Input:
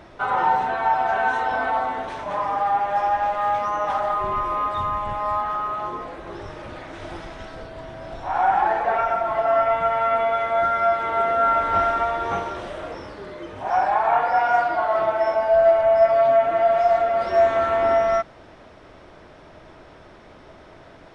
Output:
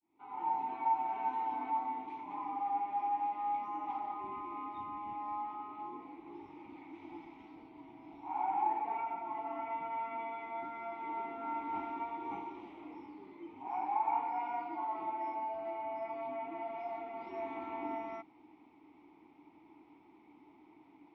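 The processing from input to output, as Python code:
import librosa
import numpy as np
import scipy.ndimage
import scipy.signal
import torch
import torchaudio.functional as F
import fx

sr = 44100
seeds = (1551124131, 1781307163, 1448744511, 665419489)

y = fx.fade_in_head(x, sr, length_s=0.74)
y = fx.vowel_filter(y, sr, vowel='u')
y = y * 10.0 ** (-2.5 / 20.0)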